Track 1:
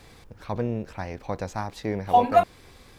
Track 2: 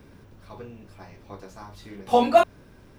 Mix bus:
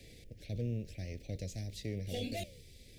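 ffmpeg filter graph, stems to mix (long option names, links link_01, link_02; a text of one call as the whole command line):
ffmpeg -i stem1.wav -i stem2.wav -filter_complex "[0:a]volume=-3.5dB,asplit=2[link_01][link_02];[1:a]flanger=delay=8.8:depth=9.4:regen=-86:speed=1.3:shape=triangular,volume=-1.5dB[link_03];[link_02]apad=whole_len=131813[link_04];[link_03][link_04]sidechaingate=range=-33dB:threshold=-45dB:ratio=16:detection=peak[link_05];[link_01][link_05]amix=inputs=2:normalize=0,acrossover=split=160|3000[link_06][link_07][link_08];[link_07]acompressor=threshold=-58dB:ratio=1.5[link_09];[link_06][link_09][link_08]amix=inputs=3:normalize=0,volume=29.5dB,asoftclip=hard,volume=-29.5dB,asuperstop=centerf=1100:order=8:qfactor=0.82" out.wav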